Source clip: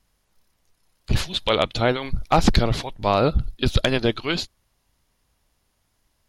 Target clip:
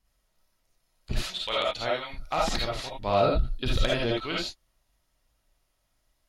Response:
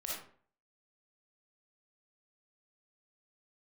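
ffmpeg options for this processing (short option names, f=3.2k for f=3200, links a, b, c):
-filter_complex "[0:a]asettb=1/sr,asplit=3[a][b][c];[a]atrim=end=1.144[d];[b]atrim=start=1.14:end=2.84,asetpts=PTS-STARTPTS,afade=t=in:d=0.004:c=qsin,afade=t=out:st=1.696:d=0.004:c=qsin,lowshelf=f=450:g=-11.5[e];[c]atrim=start=2.836[f];[d][e]acrossfade=d=0.004:c1=hsin:c2=qsin[g];[g][f]acrossfade=d=0.004:c1=qsin:c2=hsin[h];[1:a]atrim=start_sample=2205,atrim=end_sample=3969[i];[h][i]afir=irnorm=-1:irlink=0,volume=-4.5dB"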